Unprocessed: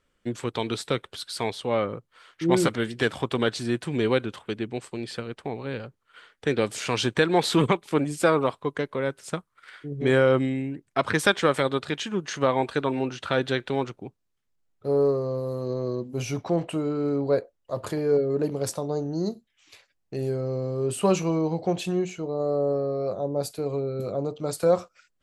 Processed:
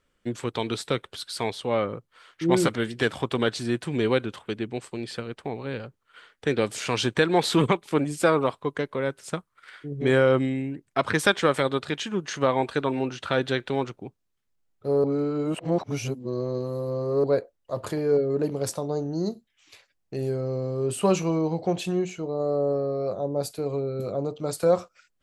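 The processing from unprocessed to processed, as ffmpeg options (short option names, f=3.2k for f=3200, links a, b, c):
-filter_complex "[0:a]asplit=3[a][b][c];[a]atrim=end=15.042[d];[b]atrim=start=15.038:end=17.242,asetpts=PTS-STARTPTS,areverse[e];[c]atrim=start=17.238[f];[d][e]acrossfade=d=0.004:c1=hsin:c2=hsin[g];[g][f]acrossfade=d=0.004:c1=hsin:c2=hsin"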